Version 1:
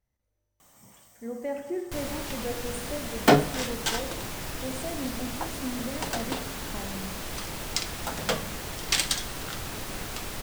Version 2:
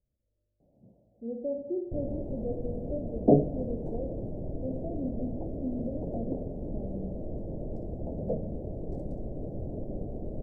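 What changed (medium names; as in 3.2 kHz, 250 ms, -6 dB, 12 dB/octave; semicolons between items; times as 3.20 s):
first sound +3.5 dB; master: add elliptic low-pass 620 Hz, stop band 50 dB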